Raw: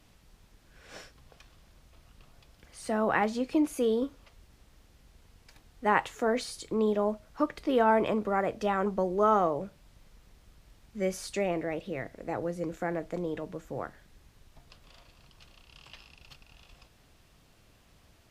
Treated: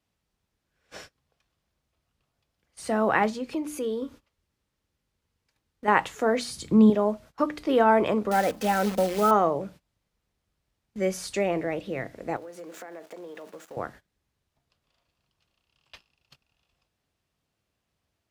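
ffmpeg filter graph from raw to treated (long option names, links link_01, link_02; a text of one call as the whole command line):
ffmpeg -i in.wav -filter_complex "[0:a]asettb=1/sr,asplit=3[link_01][link_02][link_03];[link_01]atrim=end=3.304[link_04];[link_02]atrim=start=3.3:end=5.88,asetpts=PTS-STARTPTS,afade=type=in:duration=0.004:curve=qsin,afade=type=out:start_time=2.576:duration=0.004:curve=qsin,bandreject=frequency=710:width=8.2,acompressor=threshold=-41dB:ratio=1.5:attack=3.2:release=140:knee=1:detection=peak[link_05];[link_03]atrim=start=5.876[link_06];[link_04][link_05]acrossfade=duration=0.004:curve1=hsin:curve2=qsin[link_07];[link_07][link_06]acrossfade=duration=0.004:curve1=qsin:curve2=hsin,asettb=1/sr,asplit=3[link_08][link_09][link_10];[link_08]atrim=end=6.504[link_11];[link_09]atrim=start=6.5:end=6.9,asetpts=PTS-STARTPTS,afade=type=in:duration=0.004:curve=qsin,afade=type=out:start_time=0.396:duration=0.004:curve=qsin,highpass=44,lowshelf=frequency=300:width_type=q:width=1.5:gain=9[link_12];[link_10]atrim=start=6.896[link_13];[link_11][link_12]acrossfade=duration=0.004:curve1=hsin:curve2=qsin[link_14];[link_14][link_13]acrossfade=duration=0.004:curve1=qsin:curve2=hsin,asettb=1/sr,asplit=3[link_15][link_16][link_17];[link_15]atrim=end=8.314[link_18];[link_16]atrim=start=8.31:end=9.31,asetpts=PTS-STARTPTS,afade=type=in:duration=0.004:curve=qsin,afade=type=out:start_time=0.996:duration=0.004:curve=qsin,asuperstop=centerf=1100:order=4:qfactor=3.3,acrusher=bits=7:dc=4:mix=0:aa=0.000001,aecho=1:1:3.9:0.47,atrim=end_sample=44100[link_19];[link_17]atrim=start=9.306[link_20];[link_18][link_19]acrossfade=duration=0.004:curve1=hsin:curve2=qsin[link_21];[link_21][link_20]acrossfade=duration=0.004:curve1=qsin:curve2=hsin,asettb=1/sr,asplit=3[link_22][link_23][link_24];[link_22]atrim=end=12.364[link_25];[link_23]atrim=start=12.36:end=13.77,asetpts=PTS-STARTPTS,afade=type=in:duration=0.004:curve=qsin,afade=type=out:start_time=1.406:duration=0.004:curve=qsin,aeval=exprs='val(0)+0.5*0.00473*sgn(val(0))':channel_layout=same,highpass=390,acompressor=threshold=-41dB:ratio=12:attack=3.2:release=140:knee=1:detection=peak[link_26];[link_24]atrim=start=13.766[link_27];[link_25][link_26]acrossfade=duration=0.004:curve1=hsin:curve2=qsin[link_28];[link_28][link_27]acrossfade=duration=0.004:curve1=qsin:curve2=hsin,highpass=59,bandreject=frequency=60:width_type=h:width=6,bandreject=frequency=120:width_type=h:width=6,bandreject=frequency=180:width_type=h:width=6,bandreject=frequency=240:width_type=h:width=6,bandreject=frequency=300:width_type=h:width=6,agate=range=-21dB:threshold=-49dB:ratio=16:detection=peak,volume=4dB" out.wav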